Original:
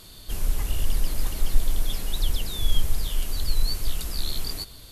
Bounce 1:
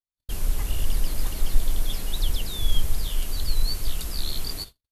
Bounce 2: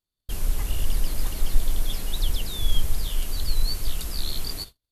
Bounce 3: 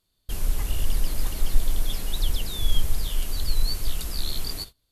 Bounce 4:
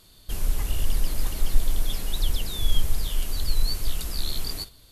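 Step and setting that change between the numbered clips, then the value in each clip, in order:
gate, range: -58 dB, -42 dB, -28 dB, -8 dB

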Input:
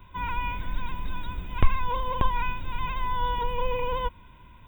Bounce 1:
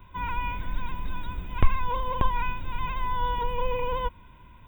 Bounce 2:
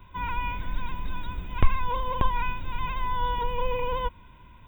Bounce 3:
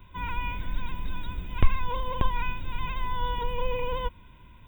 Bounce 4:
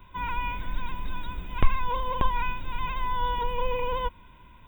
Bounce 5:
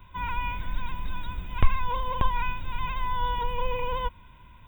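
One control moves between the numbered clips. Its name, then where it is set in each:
peaking EQ, frequency: 5.4 kHz, 15 kHz, 1 kHz, 92 Hz, 340 Hz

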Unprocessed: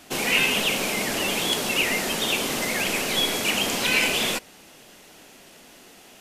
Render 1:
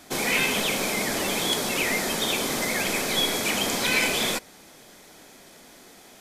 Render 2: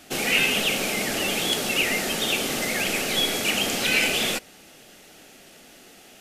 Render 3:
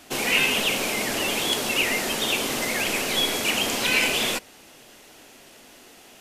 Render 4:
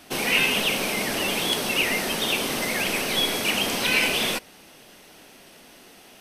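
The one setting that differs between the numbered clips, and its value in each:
band-stop, frequency: 2.8 kHz, 1 kHz, 180 Hz, 7.1 kHz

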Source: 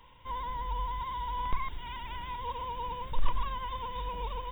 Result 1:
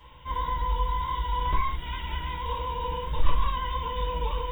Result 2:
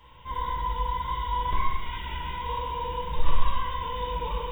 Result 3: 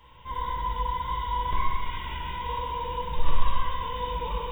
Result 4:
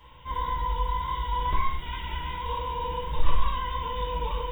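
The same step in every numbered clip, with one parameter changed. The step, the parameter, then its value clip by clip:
gated-style reverb, gate: 100 ms, 350 ms, 530 ms, 170 ms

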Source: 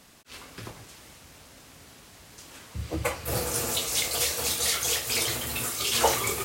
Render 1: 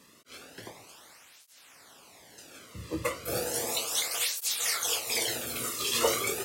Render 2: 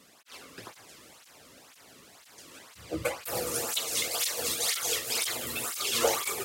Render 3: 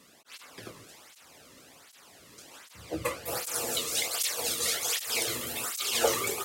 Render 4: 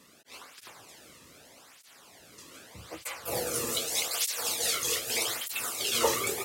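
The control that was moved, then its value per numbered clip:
cancelling through-zero flanger, nulls at: 0.34 Hz, 2 Hz, 1.3 Hz, 0.82 Hz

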